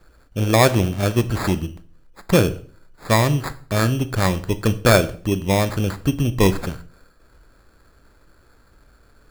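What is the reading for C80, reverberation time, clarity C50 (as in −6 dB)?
21.0 dB, 0.45 s, 16.5 dB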